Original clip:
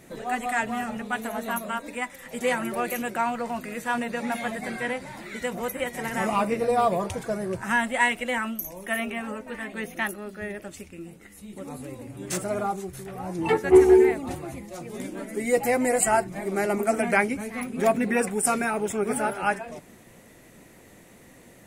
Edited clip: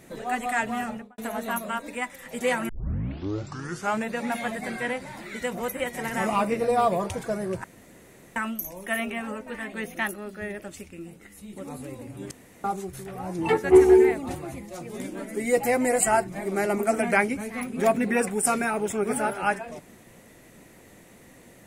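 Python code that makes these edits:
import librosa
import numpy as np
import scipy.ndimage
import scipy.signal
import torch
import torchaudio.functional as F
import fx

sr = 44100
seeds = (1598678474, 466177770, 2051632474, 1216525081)

y = fx.studio_fade_out(x, sr, start_s=0.85, length_s=0.33)
y = fx.edit(y, sr, fx.tape_start(start_s=2.69, length_s=1.41),
    fx.room_tone_fill(start_s=7.64, length_s=0.72),
    fx.room_tone_fill(start_s=12.31, length_s=0.33), tone=tone)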